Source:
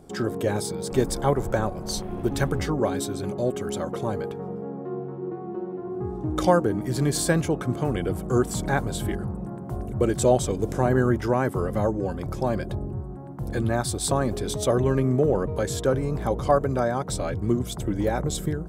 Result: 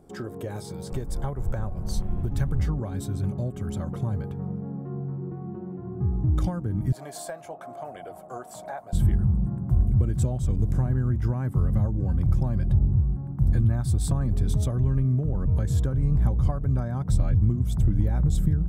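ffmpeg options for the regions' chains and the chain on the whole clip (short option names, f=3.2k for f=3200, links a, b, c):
-filter_complex "[0:a]asettb=1/sr,asplit=3[a][b][c];[a]atrim=end=0.504[d];[b]atrim=start=0.5:end=0.91,asetpts=PTS-STARTPTS,afade=t=in:d=0.004:c=qsin,afade=t=out:st=0.406:d=0.004:c=qsin,asplit=2[e][f];[f]adelay=16,volume=-12dB[g];[e][g]amix=inputs=2:normalize=0,atrim=end_sample=18081,acrossover=split=5300[h][i];[i]acompressor=threshold=-46dB:ratio=4:attack=1:release=60[j];[h][j]amix=inputs=2:normalize=0,highshelf=f=4.6k:g=8.5[k];[c]atrim=start=0.906[l];[d][k]acrossfade=d=0.004:c1=hsin:c2=qsin[m];[m][l]acrossfade=d=0.004:c1=qsin:c2=hsin,asettb=1/sr,asplit=3[n][o][p];[n]atrim=end=6.924[q];[o]atrim=start=6.92:end=8.93,asetpts=PTS-STARTPTS,afade=t=in:d=0.004:c=qsin,afade=t=out:st=2.006:d=0.004:c=qsin,flanger=delay=0.4:depth=8.3:regen=-54:speed=1:shape=sinusoidal,highpass=f=660:t=q:w=7.3[r];[p]atrim=start=8.926[s];[q][r]acrossfade=d=0.004:c1=hsin:c2=qsin[t];[t][s]acrossfade=d=0.004:c1=qsin:c2=hsin,equalizer=f=4.4k:t=o:w=2.5:g=-5.5,acompressor=threshold=-25dB:ratio=6,asubboost=boost=11:cutoff=130,volume=-4.5dB"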